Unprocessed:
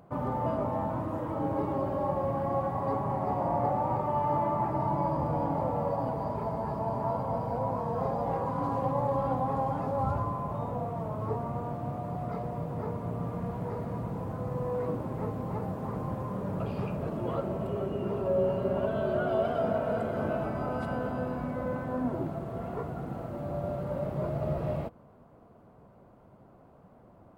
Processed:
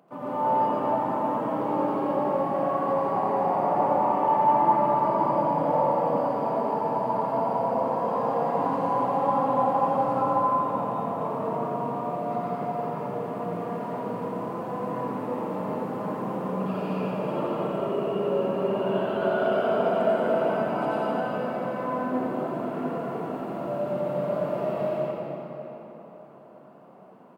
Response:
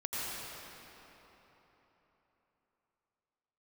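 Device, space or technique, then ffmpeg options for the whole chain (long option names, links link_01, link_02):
PA in a hall: -filter_complex "[0:a]highpass=frequency=190:width=0.5412,highpass=frequency=190:width=1.3066,equalizer=frequency=2800:width_type=o:width=0.47:gain=5,aecho=1:1:86:0.501[link_01];[1:a]atrim=start_sample=2205[link_02];[link_01][link_02]afir=irnorm=-1:irlink=0"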